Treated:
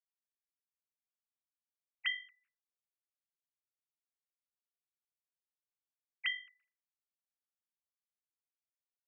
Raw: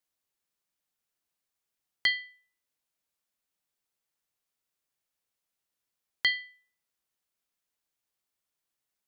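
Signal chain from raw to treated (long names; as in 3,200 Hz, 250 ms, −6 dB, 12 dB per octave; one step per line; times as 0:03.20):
three sine waves on the formant tracks
level −9 dB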